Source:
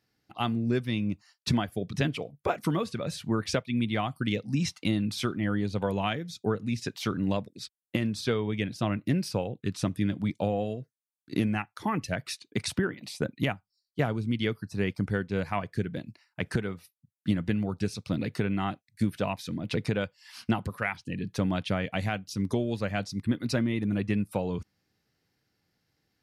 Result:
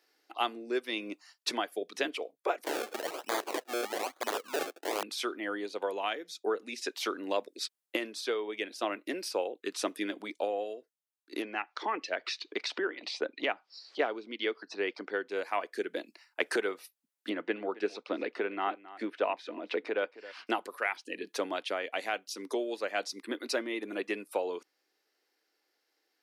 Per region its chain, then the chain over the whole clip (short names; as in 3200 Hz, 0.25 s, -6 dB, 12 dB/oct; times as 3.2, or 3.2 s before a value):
2.64–5.03 notch 660 Hz, Q 7.7 + decimation with a swept rate 31× 1.1 Hz + wrapped overs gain 22 dB
11.42–15.28 LPF 5000 Hz 24 dB/oct + upward compressor, threshold -28 dBFS
17.29–20.47 BPF 110–2600 Hz + echo 0.269 s -20 dB
whole clip: steep high-pass 330 Hz 36 dB/oct; vocal rider 0.5 s